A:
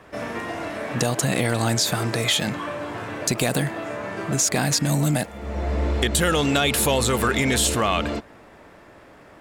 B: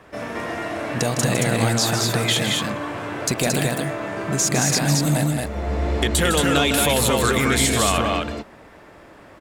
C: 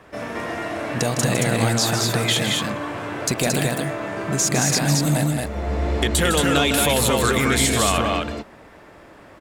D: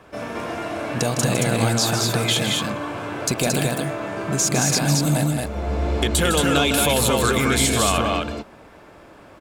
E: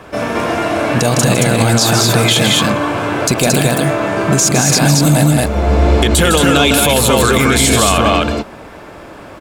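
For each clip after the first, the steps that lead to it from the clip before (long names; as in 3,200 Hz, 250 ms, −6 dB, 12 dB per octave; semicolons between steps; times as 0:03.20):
loudspeakers that aren't time-aligned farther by 54 metres −8 dB, 77 metres −3 dB
no processing that can be heard
notch filter 1,900 Hz, Q 7.8
boost into a limiter +13 dB; level −1 dB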